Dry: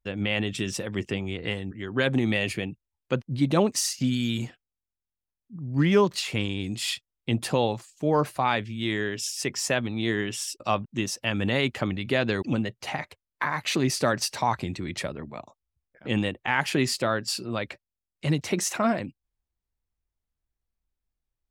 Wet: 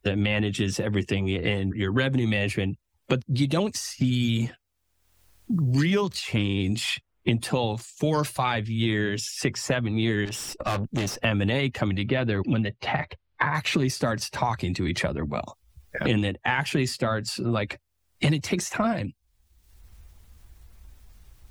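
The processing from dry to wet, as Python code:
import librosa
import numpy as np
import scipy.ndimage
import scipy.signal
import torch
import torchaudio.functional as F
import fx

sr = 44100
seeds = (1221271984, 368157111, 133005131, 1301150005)

y = fx.spec_quant(x, sr, step_db=15)
y = fx.peak_eq(y, sr, hz=70.0, db=8.0, octaves=1.6)
y = fx.tube_stage(y, sr, drive_db=33.0, bias=0.5, at=(10.25, 11.2))
y = fx.air_absorb(y, sr, metres=330.0, at=(12.03, 13.55))
y = fx.band_squash(y, sr, depth_pct=100)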